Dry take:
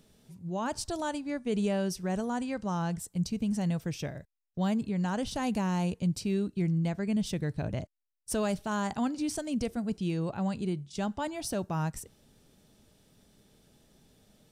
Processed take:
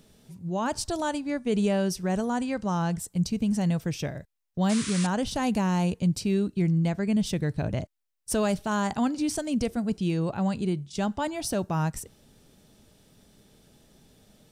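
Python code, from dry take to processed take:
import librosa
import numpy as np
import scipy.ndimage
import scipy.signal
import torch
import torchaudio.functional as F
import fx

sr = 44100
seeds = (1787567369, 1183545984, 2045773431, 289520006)

y = fx.spec_paint(x, sr, seeds[0], shape='noise', start_s=4.69, length_s=0.38, low_hz=950.0, high_hz=10000.0, level_db=-40.0)
y = y * 10.0 ** (4.5 / 20.0)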